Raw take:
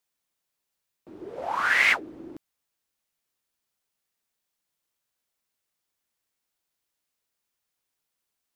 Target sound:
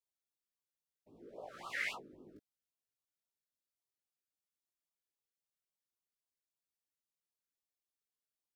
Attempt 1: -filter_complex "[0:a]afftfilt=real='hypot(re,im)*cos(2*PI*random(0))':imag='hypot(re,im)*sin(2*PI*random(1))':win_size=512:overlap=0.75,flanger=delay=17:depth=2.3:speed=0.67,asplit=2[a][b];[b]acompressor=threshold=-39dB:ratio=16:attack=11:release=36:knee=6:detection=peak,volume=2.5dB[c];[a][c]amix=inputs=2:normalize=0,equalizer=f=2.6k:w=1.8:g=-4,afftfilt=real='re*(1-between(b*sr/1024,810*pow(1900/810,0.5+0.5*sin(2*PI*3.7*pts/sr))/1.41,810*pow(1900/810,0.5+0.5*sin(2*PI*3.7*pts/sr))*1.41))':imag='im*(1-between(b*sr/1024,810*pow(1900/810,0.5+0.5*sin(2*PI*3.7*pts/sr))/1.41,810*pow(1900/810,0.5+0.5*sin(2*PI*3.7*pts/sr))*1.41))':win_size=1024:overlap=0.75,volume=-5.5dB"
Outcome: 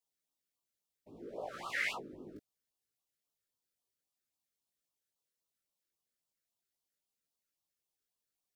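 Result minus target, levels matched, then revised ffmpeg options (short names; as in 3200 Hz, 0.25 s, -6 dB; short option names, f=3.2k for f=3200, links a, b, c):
compressor: peak gain reduction +13 dB
-af "afftfilt=real='hypot(re,im)*cos(2*PI*random(0))':imag='hypot(re,im)*sin(2*PI*random(1))':win_size=512:overlap=0.75,flanger=delay=17:depth=2.3:speed=0.67,equalizer=f=2.6k:w=1.8:g=-4,afftfilt=real='re*(1-between(b*sr/1024,810*pow(1900/810,0.5+0.5*sin(2*PI*3.7*pts/sr))/1.41,810*pow(1900/810,0.5+0.5*sin(2*PI*3.7*pts/sr))*1.41))':imag='im*(1-between(b*sr/1024,810*pow(1900/810,0.5+0.5*sin(2*PI*3.7*pts/sr))/1.41,810*pow(1900/810,0.5+0.5*sin(2*PI*3.7*pts/sr))*1.41))':win_size=1024:overlap=0.75,volume=-5.5dB"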